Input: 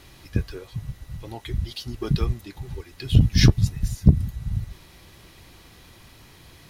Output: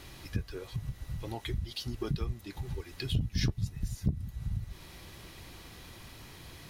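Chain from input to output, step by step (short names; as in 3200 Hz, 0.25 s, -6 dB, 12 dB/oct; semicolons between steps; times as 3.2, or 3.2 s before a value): compressor 2.5:1, threshold -34 dBFS, peak gain reduction 17.5 dB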